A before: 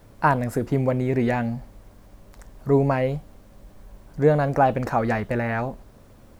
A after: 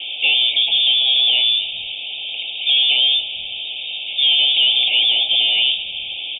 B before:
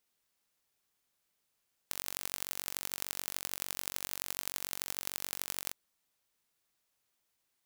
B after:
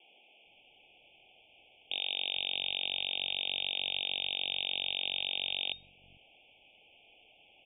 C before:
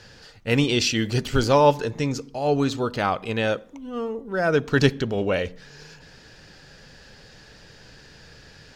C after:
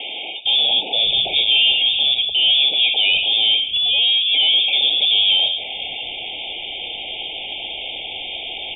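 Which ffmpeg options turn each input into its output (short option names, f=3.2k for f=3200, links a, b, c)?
-filter_complex "[0:a]aresample=16000,asoftclip=type=hard:threshold=-21dB,aresample=44100,asplit=2[a][b];[b]highpass=f=720:p=1,volume=33dB,asoftclip=type=tanh:threshold=-16.5dB[c];[a][c]amix=inputs=2:normalize=0,lowpass=f=2.5k:p=1,volume=-6dB,lowpass=f=3.1k:t=q:w=0.5098,lowpass=f=3.1k:t=q:w=0.6013,lowpass=f=3.1k:t=q:w=0.9,lowpass=f=3.1k:t=q:w=2.563,afreqshift=-3700,asuperstop=centerf=1400:order=20:qfactor=0.95,acrossover=split=190[d][e];[d]adelay=450[f];[f][e]amix=inputs=2:normalize=0,volume=6.5dB"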